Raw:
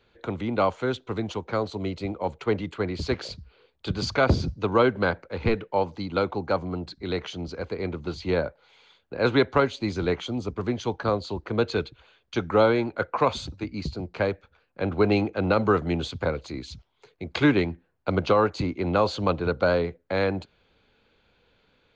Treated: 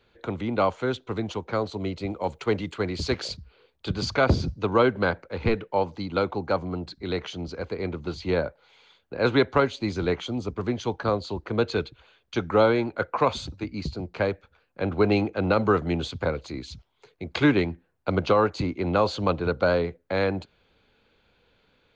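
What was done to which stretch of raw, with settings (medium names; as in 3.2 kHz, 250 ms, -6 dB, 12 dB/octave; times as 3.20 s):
2.10–3.37 s: treble shelf 4.4 kHz +8.5 dB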